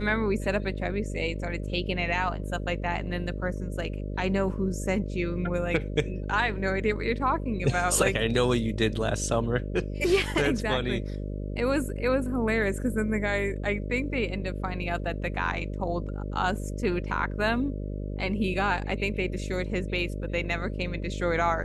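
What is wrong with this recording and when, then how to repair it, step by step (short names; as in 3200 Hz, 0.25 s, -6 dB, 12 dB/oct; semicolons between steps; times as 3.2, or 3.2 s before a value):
buzz 50 Hz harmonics 12 -33 dBFS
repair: de-hum 50 Hz, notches 12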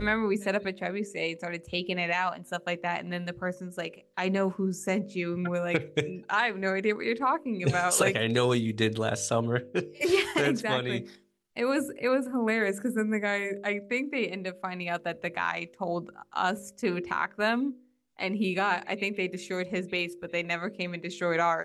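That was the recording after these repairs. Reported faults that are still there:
none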